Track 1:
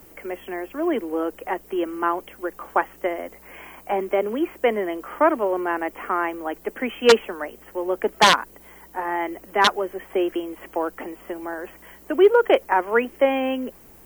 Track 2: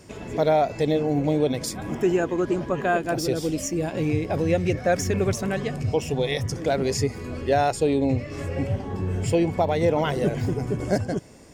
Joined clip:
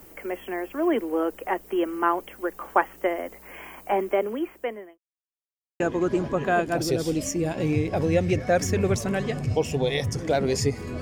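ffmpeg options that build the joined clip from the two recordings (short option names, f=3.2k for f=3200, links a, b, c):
-filter_complex "[0:a]apad=whole_dur=11.01,atrim=end=11.01,asplit=2[a][b];[a]atrim=end=4.98,asetpts=PTS-STARTPTS,afade=t=out:st=3.97:d=1.01[c];[b]atrim=start=4.98:end=5.8,asetpts=PTS-STARTPTS,volume=0[d];[1:a]atrim=start=2.17:end=7.38,asetpts=PTS-STARTPTS,afade=t=in:d=0.004:c=hsin[e];[c][d][e]concat=n=3:v=0:a=1"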